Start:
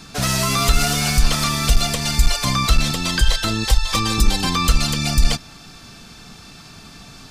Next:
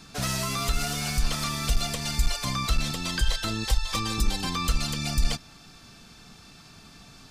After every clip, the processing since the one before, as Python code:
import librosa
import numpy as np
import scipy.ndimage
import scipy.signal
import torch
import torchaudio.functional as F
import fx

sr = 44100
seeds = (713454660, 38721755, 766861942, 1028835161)

y = fx.rider(x, sr, range_db=10, speed_s=0.5)
y = y * 10.0 ** (-9.0 / 20.0)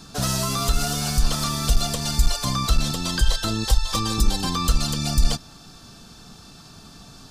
y = fx.peak_eq(x, sr, hz=2200.0, db=-10.0, octaves=0.68)
y = y * 10.0 ** (5.5 / 20.0)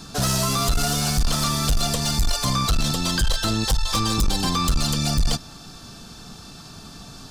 y = 10.0 ** (-18.5 / 20.0) * np.tanh(x / 10.0 ** (-18.5 / 20.0))
y = y * 10.0 ** (4.0 / 20.0)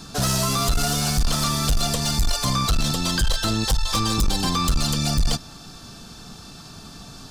y = fx.quant_float(x, sr, bits=6)